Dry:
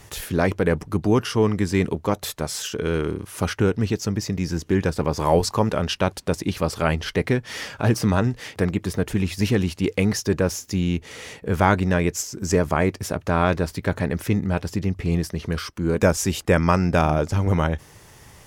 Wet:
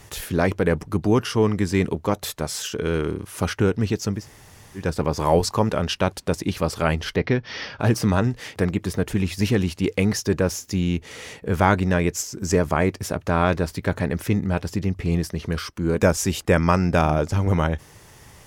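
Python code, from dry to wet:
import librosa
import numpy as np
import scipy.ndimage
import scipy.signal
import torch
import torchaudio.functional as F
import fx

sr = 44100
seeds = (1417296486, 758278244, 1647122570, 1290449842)

y = fx.steep_lowpass(x, sr, hz=5800.0, slope=72, at=(7.15, 7.79), fade=0.02)
y = fx.edit(y, sr, fx.room_tone_fill(start_s=4.19, length_s=0.63, crossfade_s=0.16), tone=tone)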